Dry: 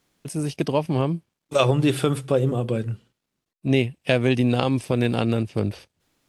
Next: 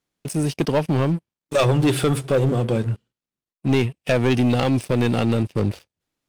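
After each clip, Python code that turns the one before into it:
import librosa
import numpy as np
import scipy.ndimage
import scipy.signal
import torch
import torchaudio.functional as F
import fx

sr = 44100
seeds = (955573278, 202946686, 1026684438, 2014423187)

y = fx.leveller(x, sr, passes=3)
y = F.gain(torch.from_numpy(y), -6.5).numpy()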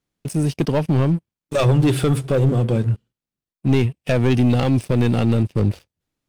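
y = fx.low_shelf(x, sr, hz=230.0, db=8.0)
y = F.gain(torch.from_numpy(y), -2.0).numpy()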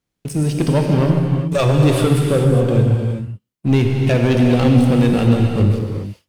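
y = fx.rev_gated(x, sr, seeds[0], gate_ms=440, shape='flat', drr_db=1.0)
y = F.gain(torch.from_numpy(y), 1.0).numpy()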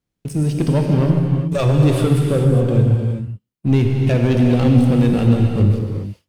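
y = fx.low_shelf(x, sr, hz=370.0, db=5.5)
y = F.gain(torch.from_numpy(y), -4.5).numpy()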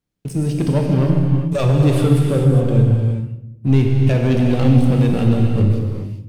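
y = fx.room_shoebox(x, sr, seeds[1], volume_m3=310.0, walls='mixed', distance_m=0.38)
y = F.gain(torch.from_numpy(y), -1.0).numpy()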